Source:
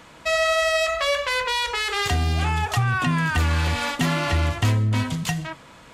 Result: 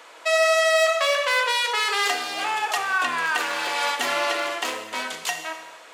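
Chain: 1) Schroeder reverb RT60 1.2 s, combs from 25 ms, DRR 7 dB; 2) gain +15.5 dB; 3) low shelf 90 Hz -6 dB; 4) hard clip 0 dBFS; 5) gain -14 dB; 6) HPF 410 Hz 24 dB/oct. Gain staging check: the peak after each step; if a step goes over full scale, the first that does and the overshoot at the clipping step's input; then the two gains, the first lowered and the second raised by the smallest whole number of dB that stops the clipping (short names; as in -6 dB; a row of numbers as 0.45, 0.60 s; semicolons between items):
-9.5, +6.0, +5.5, 0.0, -14.0, -7.5 dBFS; step 2, 5.5 dB; step 2 +9.5 dB, step 5 -8 dB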